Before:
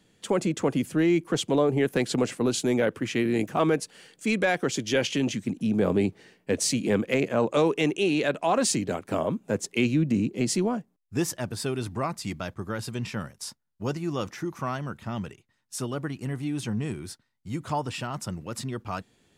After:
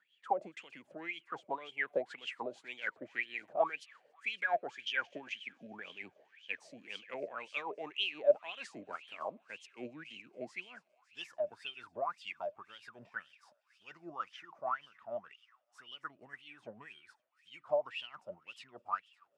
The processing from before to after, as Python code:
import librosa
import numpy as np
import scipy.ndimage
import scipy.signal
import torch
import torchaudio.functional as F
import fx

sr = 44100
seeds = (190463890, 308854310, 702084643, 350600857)

y = x * (1.0 - 0.54 / 2.0 + 0.54 / 2.0 * np.cos(2.0 * np.pi * 6.6 * (np.arange(len(x)) / sr)))
y = fx.echo_wet_highpass(y, sr, ms=281, feedback_pct=81, hz=2400.0, wet_db=-18.0)
y = fx.wah_lfo(y, sr, hz=1.9, low_hz=580.0, high_hz=3200.0, q=15.0)
y = F.gain(torch.from_numpy(y), 8.5).numpy()